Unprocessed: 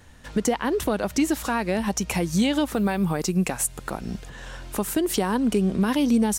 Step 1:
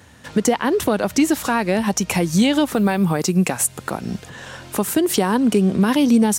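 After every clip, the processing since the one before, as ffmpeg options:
-af "highpass=f=82:w=0.5412,highpass=f=82:w=1.3066,volume=5.5dB"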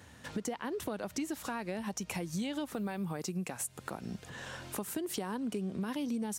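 -af "acompressor=threshold=-32dB:ratio=2.5,volume=-7.5dB"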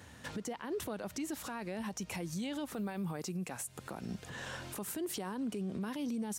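-af "alimiter=level_in=8dB:limit=-24dB:level=0:latency=1:release=17,volume=-8dB,volume=1dB"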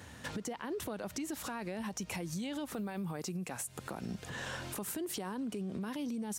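-af "acompressor=threshold=-38dB:ratio=6,volume=3dB"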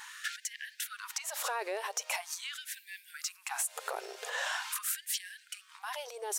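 -af "asoftclip=type=tanh:threshold=-29dB,afftfilt=real='re*gte(b*sr/1024,370*pow(1600/370,0.5+0.5*sin(2*PI*0.43*pts/sr)))':imag='im*gte(b*sr/1024,370*pow(1600/370,0.5+0.5*sin(2*PI*0.43*pts/sr)))':win_size=1024:overlap=0.75,volume=8dB"

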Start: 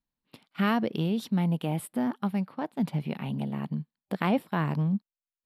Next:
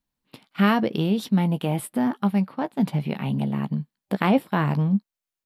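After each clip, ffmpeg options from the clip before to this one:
-filter_complex "[0:a]asplit=2[a][b];[b]adelay=15,volume=-11.5dB[c];[a][c]amix=inputs=2:normalize=0,volume=5.5dB"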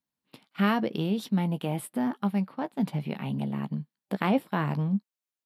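-af "highpass=110,volume=-5dB"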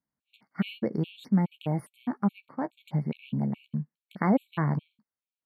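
-af "bass=f=250:g=4,treble=f=4k:g=-12,afftfilt=real='re*gt(sin(2*PI*2.4*pts/sr)*(1-2*mod(floor(b*sr/1024/2200),2)),0)':imag='im*gt(sin(2*PI*2.4*pts/sr)*(1-2*mod(floor(b*sr/1024/2200),2)),0)':win_size=1024:overlap=0.75"

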